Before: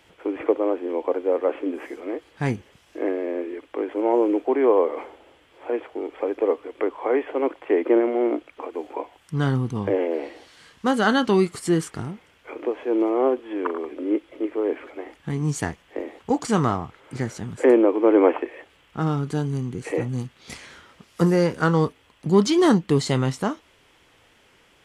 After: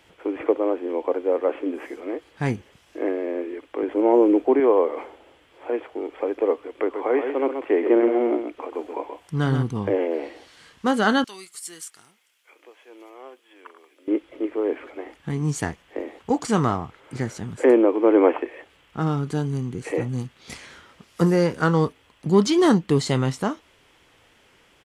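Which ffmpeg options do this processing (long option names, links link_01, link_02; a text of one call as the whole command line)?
ffmpeg -i in.wav -filter_complex "[0:a]asettb=1/sr,asplit=3[link_01][link_02][link_03];[link_01]atrim=end=3.834[link_04];[link_02]atrim=start=3.83:end=4.6,asetpts=PTS-STARTPTS,afade=type=in:duration=0.004:curve=qsin,afade=type=out:start_time=0.766:duration=0.004:curve=qsin,lowshelf=frequency=370:gain=7.5[link_05];[link_03]atrim=start=4.596[link_06];[link_04][link_05]acrossfade=duration=0.004:curve1=hsin:curve2=qsin[link_07];[link_07][link_06]acrossfade=duration=0.004:curve1=qsin:curve2=hsin,asplit=3[link_08][link_09][link_10];[link_08]afade=type=out:start_time=6.93:duration=0.02[link_11];[link_09]aecho=1:1:129:0.447,afade=type=in:start_time=6.93:duration=0.02,afade=type=out:start_time=9.62:duration=0.02[link_12];[link_10]afade=type=in:start_time=9.62:duration=0.02[link_13];[link_11][link_12][link_13]amix=inputs=3:normalize=0,asettb=1/sr,asplit=3[link_14][link_15][link_16];[link_14]atrim=end=11.244[link_17];[link_15]atrim=start=11.24:end=14.08,asetpts=PTS-STARTPTS,afade=type=in:duration=0.004:curve=qsin,afade=type=out:start_time=2.836:duration=0.004:curve=qsin,aderivative[link_18];[link_16]atrim=start=14.076[link_19];[link_17][link_18]acrossfade=duration=0.004:curve1=hsin:curve2=qsin[link_20];[link_20][link_19]acrossfade=duration=0.004:curve1=qsin:curve2=hsin" out.wav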